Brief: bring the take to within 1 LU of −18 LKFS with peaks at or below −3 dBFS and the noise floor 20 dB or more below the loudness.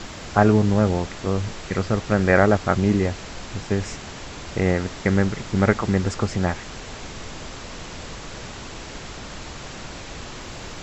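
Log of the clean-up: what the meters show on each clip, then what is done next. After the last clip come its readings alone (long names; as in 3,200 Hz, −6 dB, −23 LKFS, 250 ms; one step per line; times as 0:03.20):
background noise floor −37 dBFS; target noise floor −42 dBFS; integrated loudness −22.0 LKFS; sample peak −2.0 dBFS; target loudness −18.0 LKFS
→ noise reduction from a noise print 6 dB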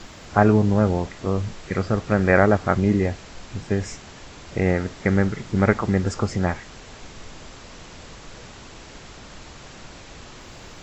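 background noise floor −43 dBFS; integrated loudness −22.0 LKFS; sample peak −2.0 dBFS; target loudness −18.0 LKFS
→ level +4 dB
brickwall limiter −3 dBFS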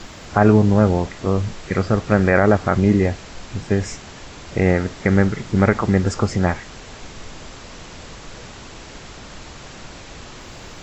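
integrated loudness −18.5 LKFS; sample peak −3.0 dBFS; background noise floor −39 dBFS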